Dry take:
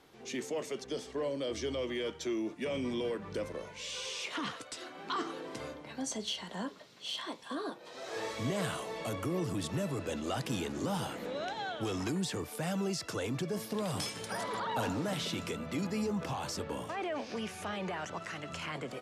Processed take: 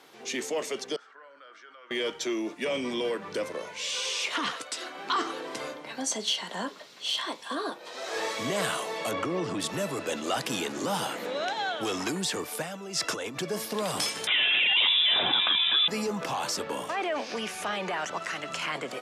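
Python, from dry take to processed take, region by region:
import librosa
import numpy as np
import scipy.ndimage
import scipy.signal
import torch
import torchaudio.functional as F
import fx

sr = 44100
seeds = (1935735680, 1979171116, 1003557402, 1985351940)

y = fx.chain(x, sr, fx.bandpass_q(hz=1400.0, q=9.6),
    fx.env_flatten(amount_pct=50), at=(0.96, 1.91))
y = fx.chain(y, sr, fx.air_absorb(metres=110.0),
    fx.env_flatten(amount_pct=50), at=(9.11, 9.6))
y = fx.chain(y, sr, fx.high_shelf(hz=11000.0, db=-6.5),
    fx.notch(hz=4400.0, q=11.0),
    fx.over_compress(threshold_db=-40.0, ratio=-1.0), at=(12.62, 13.37))
y = fx.chain(y, sr, fx.freq_invert(carrier_hz=3700),
    fx.notch(hz=1400.0, q=30.0),
    fx.env_flatten(amount_pct=70), at=(14.27, 15.88))
y = scipy.signal.sosfilt(scipy.signal.butter(2, 160.0, 'highpass', fs=sr, output='sos'), y)
y = fx.low_shelf(y, sr, hz=380.0, db=-9.5)
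y = F.gain(torch.from_numpy(y), 9.0).numpy()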